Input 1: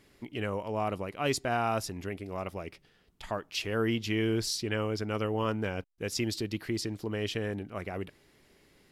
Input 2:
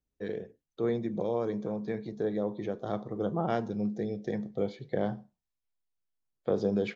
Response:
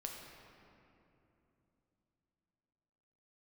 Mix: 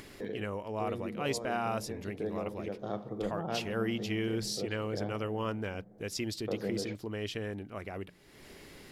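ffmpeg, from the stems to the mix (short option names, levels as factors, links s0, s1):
-filter_complex "[0:a]bandreject=f=60:t=h:w=6,bandreject=f=120:t=h:w=6,bandreject=f=180:t=h:w=6,volume=0.631,asplit=2[s0][s1];[1:a]volume=0.531,asplit=2[s2][s3];[s3]volume=0.447[s4];[s1]apad=whole_len=306640[s5];[s2][s5]sidechaincompress=threshold=0.0112:ratio=8:attack=16:release=446[s6];[2:a]atrim=start_sample=2205[s7];[s4][s7]afir=irnorm=-1:irlink=0[s8];[s0][s6][s8]amix=inputs=3:normalize=0,acompressor=mode=upward:threshold=0.0141:ratio=2.5"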